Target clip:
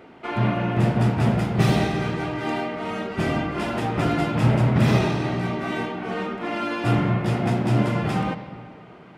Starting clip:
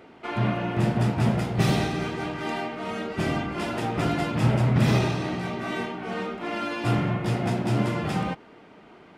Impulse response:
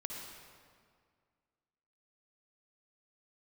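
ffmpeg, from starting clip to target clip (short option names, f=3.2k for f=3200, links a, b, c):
-filter_complex "[0:a]asplit=2[a][b];[1:a]atrim=start_sample=2205,lowpass=3.9k[c];[b][c]afir=irnorm=-1:irlink=0,volume=-5dB[d];[a][d]amix=inputs=2:normalize=0"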